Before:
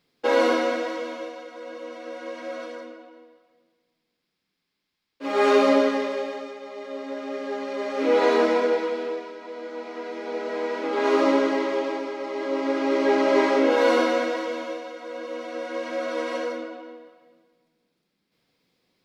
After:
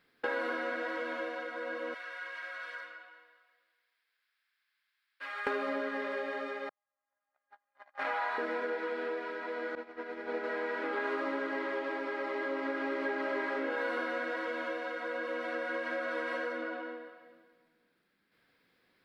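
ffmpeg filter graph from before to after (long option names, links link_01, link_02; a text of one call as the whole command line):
ffmpeg -i in.wav -filter_complex "[0:a]asettb=1/sr,asplit=3[link_01][link_02][link_03];[link_01]atrim=end=1.944[link_04];[link_02]atrim=start=1.94:end=5.47,asetpts=PTS-STARTPTS,afade=type=in:duration=0.004:curve=qsin,afade=type=out:start_time=3.526:duration=0.004:curve=qsin,highpass=1300,acompressor=threshold=-43dB:ratio=4:attack=3.2:release=140:knee=1:detection=peak[link_05];[link_03]atrim=start=5.466[link_06];[link_04][link_05]acrossfade=duration=0.004:curve1=hsin:curve2=qsin[link_07];[link_07][link_06]acrossfade=duration=0.004:curve1=qsin:curve2=hsin,asettb=1/sr,asplit=3[link_08][link_09][link_10];[link_08]atrim=end=6.694[link_11];[link_09]atrim=start=6.69:end=8.38,asetpts=PTS-STARTPTS,afade=type=in:duration=0.004:curve=qsin,afade=type=out:start_time=1.686:duration=0.004:curve=qsin,agate=range=-55dB:threshold=-25dB:ratio=16:release=100:detection=peak,lowshelf=frequency=560:width_type=q:width=3:gain=-12.5[link_12];[link_10]atrim=start=8.376[link_13];[link_11][link_12]acrossfade=duration=0.004:curve1=hsin:curve2=qsin[link_14];[link_14][link_13]acrossfade=duration=0.004:curve1=qsin:curve2=hsin,asettb=1/sr,asplit=3[link_15][link_16][link_17];[link_15]atrim=end=9.754[link_18];[link_16]atrim=start=9.75:end=10.44,asetpts=PTS-STARTPTS,afade=type=in:duration=0.004:curve=qsin,afade=type=out:start_time=0.686:duration=0.004:curve=qsin,agate=range=-33dB:threshold=-27dB:ratio=3:release=100:detection=peak,lowshelf=frequency=370:gain=5.5[link_19];[link_17]atrim=start=10.436[link_20];[link_18][link_19]acrossfade=duration=0.004:curve1=hsin:curve2=qsin[link_21];[link_21][link_20]acrossfade=duration=0.004:curve1=qsin:curve2=hsin,equalizer=frequency=160:width_type=o:width=0.67:gain=-4,equalizer=frequency=1600:width_type=o:width=0.67:gain=12,equalizer=frequency=6300:width_type=o:width=0.67:gain=-10,acompressor=threshold=-31dB:ratio=6,volume=-1.5dB" out.wav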